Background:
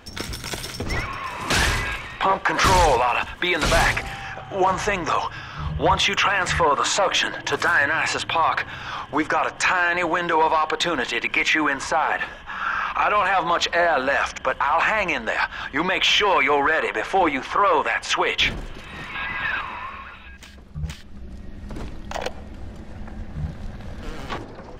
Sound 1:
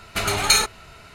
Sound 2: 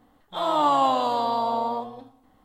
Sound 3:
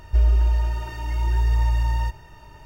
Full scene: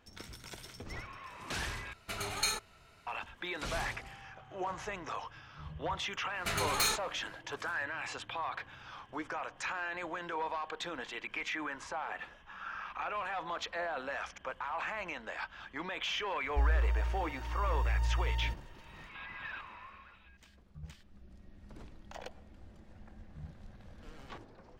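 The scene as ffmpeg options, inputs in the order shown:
ffmpeg -i bed.wav -i cue0.wav -i cue1.wav -i cue2.wav -filter_complex "[1:a]asplit=2[link_01][link_02];[0:a]volume=-18dB[link_03];[link_02]aeval=exprs='0.251*(abs(mod(val(0)/0.251+3,4)-2)-1)':channel_layout=same[link_04];[link_03]asplit=2[link_05][link_06];[link_05]atrim=end=1.934[link_07];[link_01]atrim=end=1.14,asetpts=PTS-STARTPTS,volume=-15.5dB[link_08];[link_06]atrim=start=3.066[link_09];[link_04]atrim=end=1.14,asetpts=PTS-STARTPTS,volume=-11dB,afade=type=in:duration=0.1,afade=type=out:start_time=1.04:duration=0.1,adelay=6300[link_10];[3:a]atrim=end=2.65,asetpts=PTS-STARTPTS,volume=-11.5dB,afade=type=in:duration=0.004:curve=hsin,afade=type=out:start_time=2.646:duration=0.004:curve=hsin,adelay=16430[link_11];[link_07][link_08]acrossfade=duration=0.004:curve1=hsin:curve2=hsin[link_12];[link_12][link_09]acrossfade=duration=0.004:curve1=hsin:curve2=hsin[link_13];[link_13][link_10][link_11]amix=inputs=3:normalize=0" out.wav

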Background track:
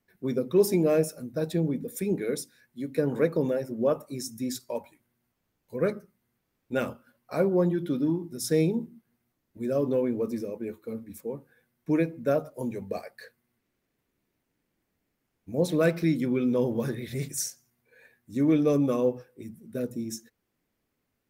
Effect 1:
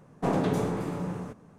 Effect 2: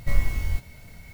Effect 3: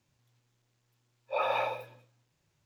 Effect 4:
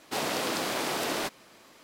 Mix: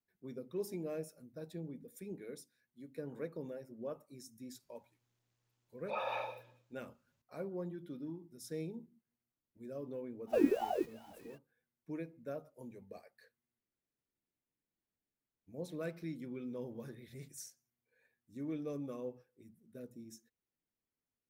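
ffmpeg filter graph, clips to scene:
ffmpeg -i bed.wav -i cue0.wav -i cue1.wav -i cue2.wav -filter_complex "[0:a]volume=-18dB[link_01];[2:a]aeval=exprs='val(0)*sin(2*PI*550*n/s+550*0.5/2.5*sin(2*PI*2.5*n/s))':channel_layout=same[link_02];[3:a]atrim=end=2.65,asetpts=PTS-STARTPTS,volume=-8.5dB,afade=type=in:duration=0.004:curve=hsin,afade=type=out:start_time=2.646:duration=0.004:curve=hsin,adelay=201537S[link_03];[link_02]atrim=end=1.13,asetpts=PTS-STARTPTS,volume=-9.5dB,afade=type=in:duration=0.05,afade=type=out:start_time=1.08:duration=0.05,adelay=452466S[link_04];[link_01][link_03][link_04]amix=inputs=3:normalize=0" out.wav

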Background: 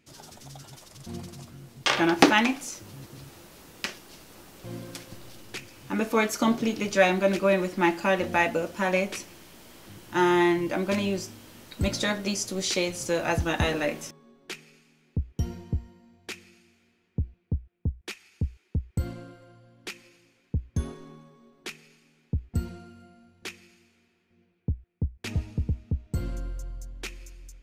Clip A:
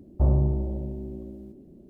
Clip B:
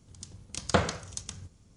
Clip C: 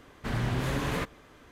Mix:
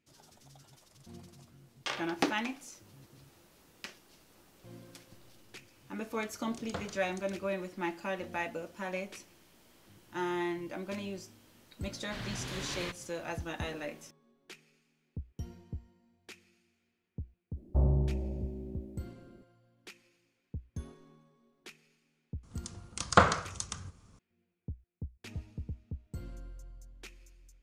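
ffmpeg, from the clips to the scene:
ffmpeg -i bed.wav -i cue0.wav -i cue1.wav -i cue2.wav -filter_complex "[2:a]asplit=2[link_01][link_02];[0:a]volume=-12.5dB[link_03];[3:a]equalizer=frequency=4100:width_type=o:width=2.1:gain=12[link_04];[link_02]equalizer=frequency=1200:width_type=o:width=0.83:gain=10.5[link_05];[link_01]atrim=end=1.76,asetpts=PTS-STARTPTS,volume=-15.5dB,afade=type=in:duration=0.004:curve=hsin,afade=type=out:start_time=1.756:duration=0.004:curve=hsin,adelay=6000[link_06];[link_04]atrim=end=1.51,asetpts=PTS-STARTPTS,volume=-12.5dB,afade=type=in:duration=0.004:curve=hsin,afade=type=out:start_time=1.506:duration=0.004:curve=hsin,adelay=11870[link_07];[1:a]atrim=end=1.89,asetpts=PTS-STARTPTS,volume=-6dB,afade=type=in:duration=0.02,afade=type=out:start_time=1.87:duration=0.02,adelay=17550[link_08];[link_05]atrim=end=1.76,asetpts=PTS-STARTPTS,volume=-0.5dB,afade=type=in:duration=0.004:curve=hsin,afade=type=out:start_time=1.756:duration=0.004:curve=hsin,adelay=22430[link_09];[link_03][link_06][link_07][link_08][link_09]amix=inputs=5:normalize=0" out.wav

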